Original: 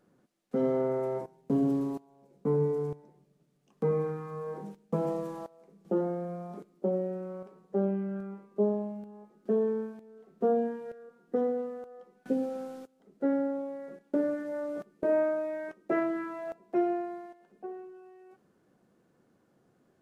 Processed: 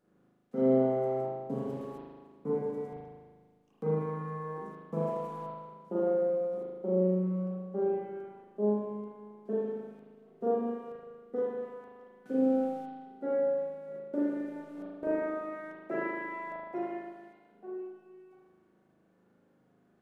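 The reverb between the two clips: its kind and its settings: spring tank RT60 1.5 s, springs 38 ms, chirp 40 ms, DRR -7 dB; gain -8 dB

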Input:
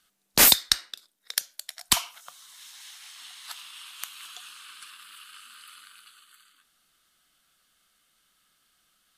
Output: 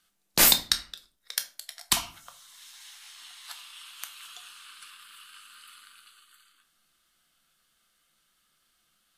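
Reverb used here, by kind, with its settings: shoebox room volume 240 m³, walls furnished, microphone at 0.81 m; gain -3 dB

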